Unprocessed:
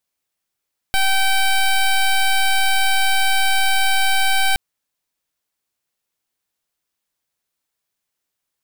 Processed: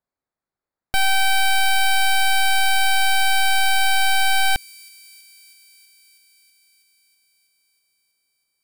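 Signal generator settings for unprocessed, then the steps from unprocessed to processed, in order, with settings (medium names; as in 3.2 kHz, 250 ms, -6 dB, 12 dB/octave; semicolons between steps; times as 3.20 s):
pulse 773 Hz, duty 12% -15.5 dBFS 3.62 s
local Wiener filter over 15 samples; feedback echo behind a high-pass 323 ms, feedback 74%, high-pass 5.6 kHz, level -18 dB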